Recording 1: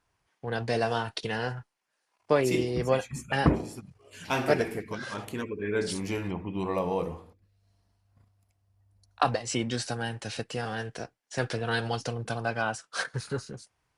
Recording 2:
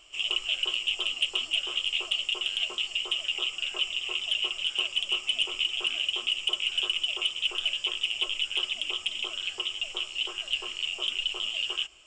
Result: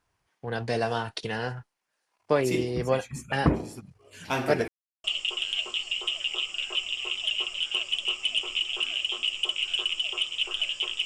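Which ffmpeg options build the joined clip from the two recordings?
ffmpeg -i cue0.wav -i cue1.wav -filter_complex "[0:a]apad=whole_dur=11.05,atrim=end=11.05,asplit=2[link_01][link_02];[link_01]atrim=end=4.68,asetpts=PTS-STARTPTS,afade=type=out:start_time=4.676:duration=0.004:curve=hsin[link_03];[link_02]atrim=start=4.68:end=5.04,asetpts=PTS-STARTPTS,volume=0[link_04];[1:a]atrim=start=2.08:end=8.09,asetpts=PTS-STARTPTS,afade=type=in:duration=0.004:curve=hsin[link_05];[link_03][link_04][link_05]concat=n=3:v=0:a=1" out.wav

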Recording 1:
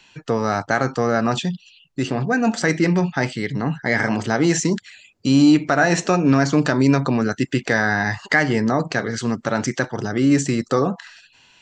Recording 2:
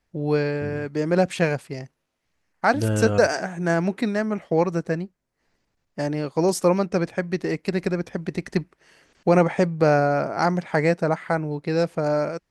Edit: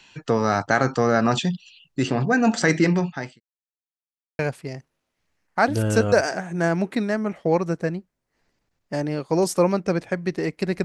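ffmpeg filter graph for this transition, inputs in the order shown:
ffmpeg -i cue0.wav -i cue1.wav -filter_complex "[0:a]apad=whole_dur=10.84,atrim=end=10.84,asplit=2[link_01][link_02];[link_01]atrim=end=3.4,asetpts=PTS-STARTPTS,afade=type=out:start_time=2.8:duration=0.6[link_03];[link_02]atrim=start=3.4:end=4.39,asetpts=PTS-STARTPTS,volume=0[link_04];[1:a]atrim=start=1.45:end=7.9,asetpts=PTS-STARTPTS,afade=type=in:duration=0.004:curve=hsin[link_05];[link_03][link_04][link_05]concat=n=3:v=0:a=1" out.wav

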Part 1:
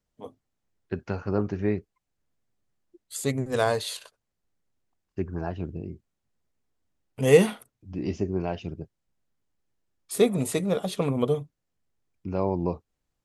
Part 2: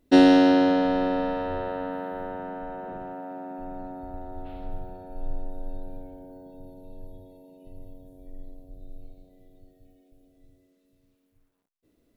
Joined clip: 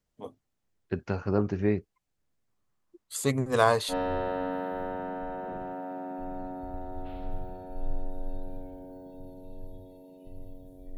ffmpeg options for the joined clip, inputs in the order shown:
ffmpeg -i cue0.wav -i cue1.wav -filter_complex "[0:a]asettb=1/sr,asplit=3[link_01][link_02][link_03];[link_01]atrim=end=2.484[link_04];[link_02]atrim=start=2.48:end=3.94,asetpts=PTS-STARTPTS,afade=type=in:duration=0.004:curve=qsin,afade=type=out:start_time=1.456:duration=0.004:curve=qsin,equalizer=frequency=1100:width=2.4:gain=8.5[link_05];[link_03]atrim=start=3.936[link_06];[link_04][link_05]acrossfade=duration=0.004:curve1=hsin:curve2=qsin[link_07];[link_07][link_06]acrossfade=duration=0.004:curve1=qsin:curve2=hsin,apad=whole_dur=10.97,atrim=end=10.97,atrim=end=3.94,asetpts=PTS-STARTPTS[link_08];[1:a]atrim=start=1.28:end=8.37,asetpts=PTS-STARTPTS[link_09];[link_08][link_09]acrossfade=duration=0.06:curve1=tri:curve2=tri" out.wav

